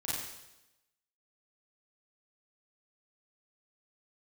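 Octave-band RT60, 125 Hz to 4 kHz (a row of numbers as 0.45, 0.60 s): 0.90, 0.95, 0.95, 0.90, 0.90, 0.95 s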